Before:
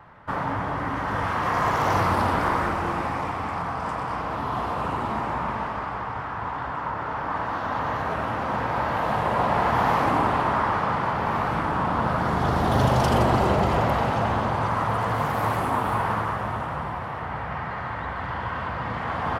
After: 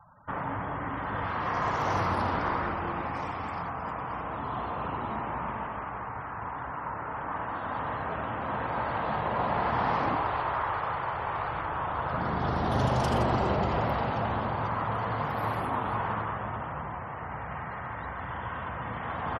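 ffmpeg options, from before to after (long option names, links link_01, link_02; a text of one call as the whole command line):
ffmpeg -i in.wav -filter_complex "[0:a]asplit=3[link_01][link_02][link_03];[link_01]afade=type=out:start_time=3.13:duration=0.02[link_04];[link_02]equalizer=frequency=8900:width=0.54:gain=8,afade=type=in:start_time=3.13:duration=0.02,afade=type=out:start_time=3.69:duration=0.02[link_05];[link_03]afade=type=in:start_time=3.69:duration=0.02[link_06];[link_04][link_05][link_06]amix=inputs=3:normalize=0,asplit=2[link_07][link_08];[link_08]afade=type=in:start_time=7.97:duration=0.01,afade=type=out:start_time=8.71:duration=0.01,aecho=0:1:470|940:0.398107|0.0398107[link_09];[link_07][link_09]amix=inputs=2:normalize=0,asettb=1/sr,asplit=3[link_10][link_11][link_12];[link_10]atrim=end=10.154[link_13];[link_11]atrim=start=10.15:end=12.13,asetpts=PTS-STARTPTS,afade=type=in:duration=0.004:curve=qsin,afade=type=out:start_time=1.976:duration=0.004:curve=qsin,equalizer=frequency=220:width=1.5:gain=-14[link_14];[link_12]atrim=start=12.126[link_15];[link_13][link_14]acrossfade=duration=0.004:curve1=hsin:curve2=qsin[link_16];[link_16][link_15]acrossfade=duration=0.004:curve1=qsin:curve2=hsin,afftfilt=real='re*gte(hypot(re,im),0.00708)':imag='im*gte(hypot(re,im),0.00708)':win_size=1024:overlap=0.75,volume=-6dB" out.wav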